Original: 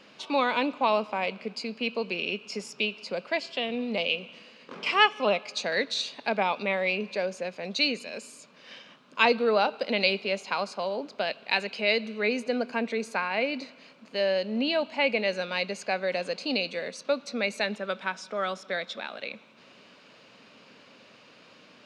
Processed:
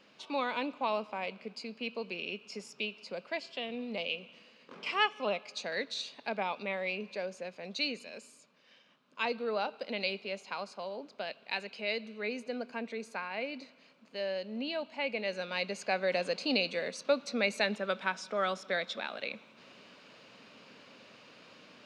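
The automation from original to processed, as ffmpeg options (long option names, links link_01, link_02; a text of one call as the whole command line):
ffmpeg -i in.wav -af "volume=6.5dB,afade=type=out:start_time=8.08:duration=0.65:silence=0.398107,afade=type=in:start_time=8.73:duration=0.87:silence=0.473151,afade=type=in:start_time=15.09:duration=1.07:silence=0.398107" out.wav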